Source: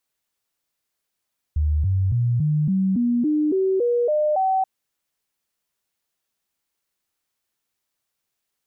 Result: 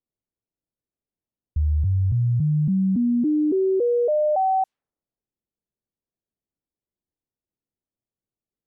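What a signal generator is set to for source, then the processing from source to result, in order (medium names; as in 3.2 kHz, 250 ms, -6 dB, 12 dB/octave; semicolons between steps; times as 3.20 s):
stepped sine 75.6 Hz up, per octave 3, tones 11, 0.28 s, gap 0.00 s -17 dBFS
level-controlled noise filter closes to 390 Hz, open at -19 dBFS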